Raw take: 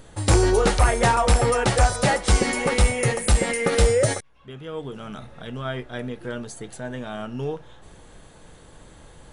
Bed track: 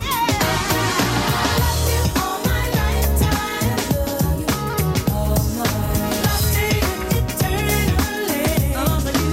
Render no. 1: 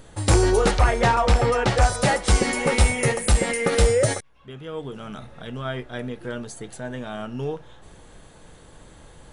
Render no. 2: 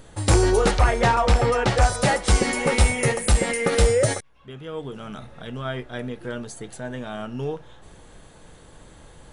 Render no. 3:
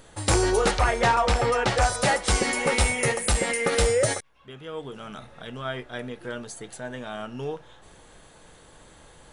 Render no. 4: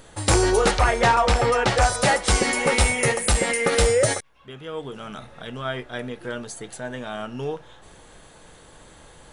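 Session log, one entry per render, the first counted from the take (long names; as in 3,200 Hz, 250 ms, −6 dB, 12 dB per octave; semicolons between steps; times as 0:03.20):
0:00.71–0:01.82: low-pass filter 5,500 Hz; 0:02.63–0:03.12: double-tracking delay 13 ms −5.5 dB
no processing that can be heard
low-shelf EQ 360 Hz −7 dB
level +3 dB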